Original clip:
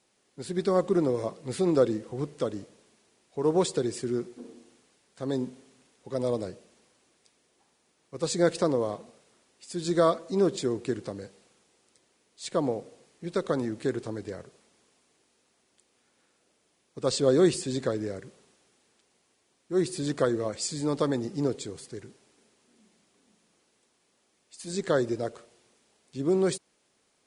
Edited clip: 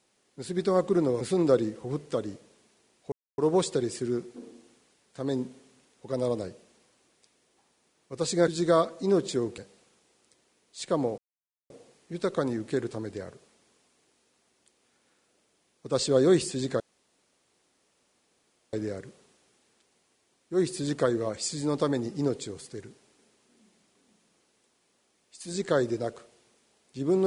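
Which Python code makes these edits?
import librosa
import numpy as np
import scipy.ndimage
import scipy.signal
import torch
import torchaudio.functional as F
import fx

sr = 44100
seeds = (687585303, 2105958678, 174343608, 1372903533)

y = fx.edit(x, sr, fx.cut(start_s=1.21, length_s=0.28),
    fx.insert_silence(at_s=3.4, length_s=0.26),
    fx.cut(start_s=8.5, length_s=1.27),
    fx.cut(start_s=10.87, length_s=0.35),
    fx.insert_silence(at_s=12.82, length_s=0.52),
    fx.insert_room_tone(at_s=17.92, length_s=1.93), tone=tone)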